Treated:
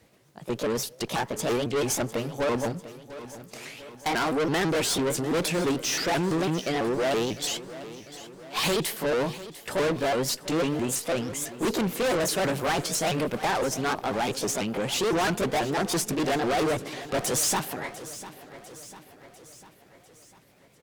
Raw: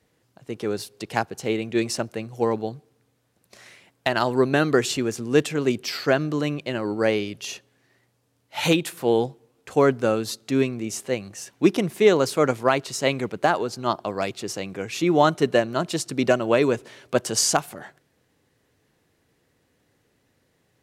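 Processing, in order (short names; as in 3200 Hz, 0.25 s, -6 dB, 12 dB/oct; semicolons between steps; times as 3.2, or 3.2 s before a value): repeated pitch sweeps +5 st, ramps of 0.166 s; tube stage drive 31 dB, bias 0.3; feedback echo 0.698 s, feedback 55%, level -15.5 dB; gain +8 dB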